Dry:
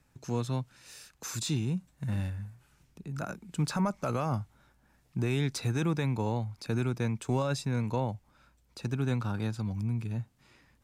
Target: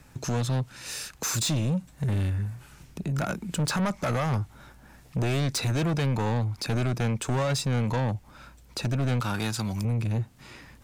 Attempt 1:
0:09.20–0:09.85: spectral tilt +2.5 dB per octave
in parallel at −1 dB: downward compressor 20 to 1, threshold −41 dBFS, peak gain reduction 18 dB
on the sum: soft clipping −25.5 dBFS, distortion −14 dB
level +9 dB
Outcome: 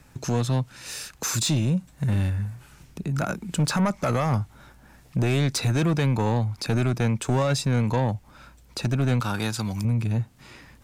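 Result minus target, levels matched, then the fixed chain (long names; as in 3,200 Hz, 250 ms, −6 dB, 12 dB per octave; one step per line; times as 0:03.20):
soft clipping: distortion −5 dB
0:09.20–0:09.85: spectral tilt +2.5 dB per octave
in parallel at −1 dB: downward compressor 20 to 1, threshold −41 dBFS, peak gain reduction 18 dB
on the sum: soft clipping −31.5 dBFS, distortion −8 dB
level +9 dB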